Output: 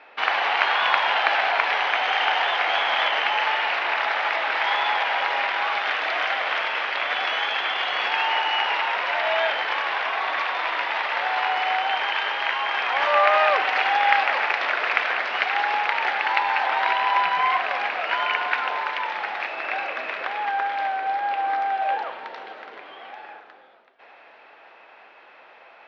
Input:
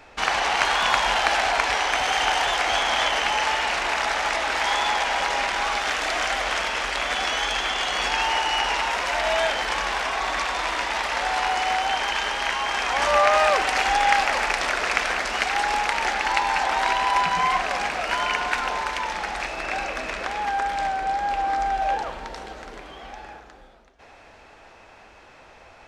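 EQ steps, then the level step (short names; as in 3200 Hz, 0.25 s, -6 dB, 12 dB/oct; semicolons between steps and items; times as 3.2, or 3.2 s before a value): BPF 430–3500 Hz; air absorption 290 m; high shelf 2200 Hz +11 dB; 0.0 dB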